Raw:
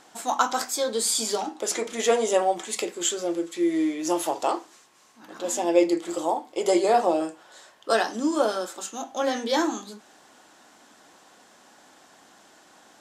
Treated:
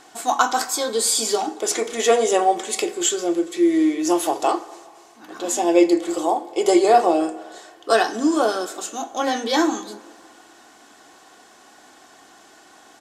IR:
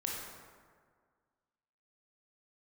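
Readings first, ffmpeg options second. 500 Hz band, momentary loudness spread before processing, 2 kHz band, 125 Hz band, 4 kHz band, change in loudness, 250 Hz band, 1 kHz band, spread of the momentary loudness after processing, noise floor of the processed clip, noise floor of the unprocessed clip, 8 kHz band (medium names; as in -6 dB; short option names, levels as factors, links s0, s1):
+4.5 dB, 10 LU, +5.0 dB, no reading, +4.5 dB, +5.0 dB, +6.0 dB, +5.5 dB, 11 LU, -50 dBFS, -55 dBFS, +4.5 dB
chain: -filter_complex "[0:a]aecho=1:1:2.7:0.41,asplit=2[s0][s1];[1:a]atrim=start_sample=2205[s2];[s1][s2]afir=irnorm=-1:irlink=0,volume=0.158[s3];[s0][s3]amix=inputs=2:normalize=0,volume=1.41"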